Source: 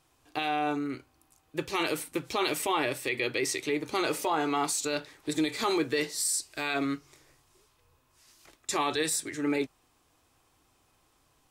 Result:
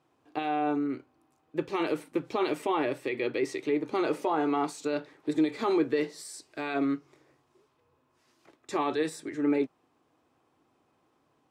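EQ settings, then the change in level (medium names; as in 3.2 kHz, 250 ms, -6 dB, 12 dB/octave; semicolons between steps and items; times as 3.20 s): high-pass 240 Hz 12 dB/octave; low-pass 1.3 kHz 6 dB/octave; bass shelf 310 Hz +9.5 dB; 0.0 dB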